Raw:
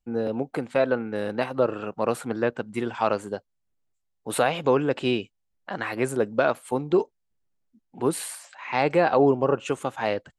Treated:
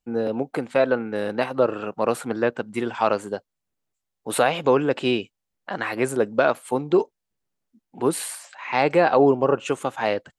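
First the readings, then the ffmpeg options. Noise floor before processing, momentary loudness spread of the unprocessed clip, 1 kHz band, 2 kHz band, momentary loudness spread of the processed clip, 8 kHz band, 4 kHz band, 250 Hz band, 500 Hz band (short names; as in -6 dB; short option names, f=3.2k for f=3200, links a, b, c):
-76 dBFS, 11 LU, +3.0 dB, +3.0 dB, 11 LU, +3.0 dB, +3.0 dB, +2.0 dB, +2.5 dB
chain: -af "lowshelf=f=91:g=-10,volume=3dB"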